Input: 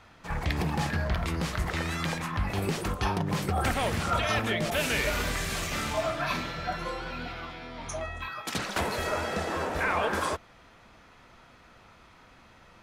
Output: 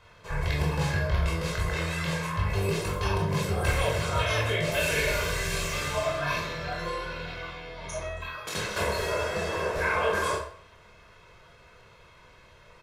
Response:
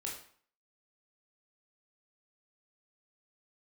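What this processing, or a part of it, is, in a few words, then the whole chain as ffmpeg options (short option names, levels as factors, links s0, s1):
microphone above a desk: -filter_complex "[0:a]aecho=1:1:1.9:0.7[s0];[1:a]atrim=start_sample=2205[s1];[s0][s1]afir=irnorm=-1:irlink=0"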